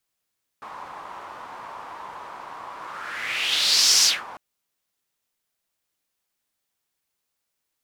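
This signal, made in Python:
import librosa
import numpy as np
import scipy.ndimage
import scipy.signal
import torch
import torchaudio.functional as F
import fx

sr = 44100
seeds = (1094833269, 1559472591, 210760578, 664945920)

y = fx.whoosh(sr, seeds[0], length_s=3.75, peak_s=3.42, rise_s=1.41, fall_s=0.22, ends_hz=1000.0, peak_hz=5500.0, q=3.7, swell_db=22.0)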